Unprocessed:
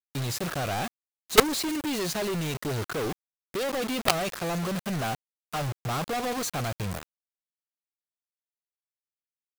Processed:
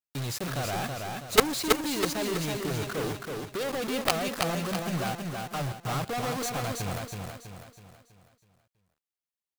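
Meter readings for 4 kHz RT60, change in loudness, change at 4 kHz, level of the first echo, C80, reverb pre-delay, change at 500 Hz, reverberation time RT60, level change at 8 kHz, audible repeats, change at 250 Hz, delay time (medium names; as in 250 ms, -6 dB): no reverb, -1.0 dB, -1.0 dB, -4.0 dB, no reverb, no reverb, -1.0 dB, no reverb, -0.5 dB, 5, -1.0 dB, 325 ms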